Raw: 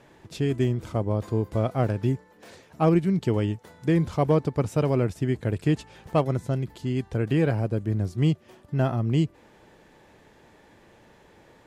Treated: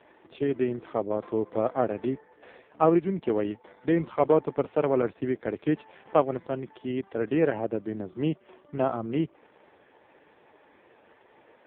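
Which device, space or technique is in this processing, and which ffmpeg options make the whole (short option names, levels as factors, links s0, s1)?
telephone: -af "highpass=320,lowpass=3400,volume=1.41" -ar 8000 -c:a libopencore_amrnb -b:a 4750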